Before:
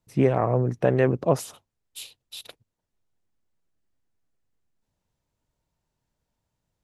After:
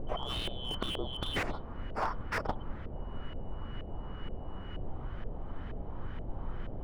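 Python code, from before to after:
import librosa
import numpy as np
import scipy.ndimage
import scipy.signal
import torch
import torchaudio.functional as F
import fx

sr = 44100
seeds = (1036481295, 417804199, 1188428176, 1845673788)

y = fx.band_shuffle(x, sr, order='2413')
y = fx.over_compress(y, sr, threshold_db=-32.0, ratio=-1.0)
y = fx.dmg_noise_colour(y, sr, seeds[0], colour='brown', level_db=-49.0)
y = np.clip(10.0 ** (26.5 / 20.0) * y, -1.0, 1.0) / 10.0 ** (26.5 / 20.0)
y = fx.filter_lfo_lowpass(y, sr, shape='saw_up', hz=2.1, low_hz=550.0, high_hz=2000.0, q=1.9)
y = fx.slew_limit(y, sr, full_power_hz=12.0)
y = y * librosa.db_to_amplitude(12.0)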